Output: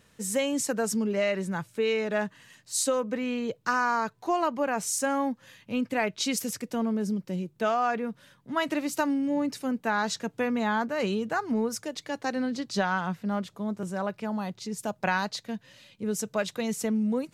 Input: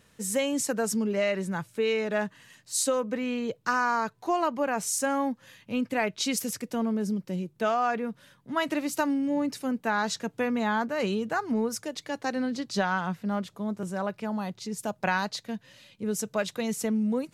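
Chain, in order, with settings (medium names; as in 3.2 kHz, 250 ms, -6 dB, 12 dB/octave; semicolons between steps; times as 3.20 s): peaking EQ 11 kHz -2.5 dB 0.29 oct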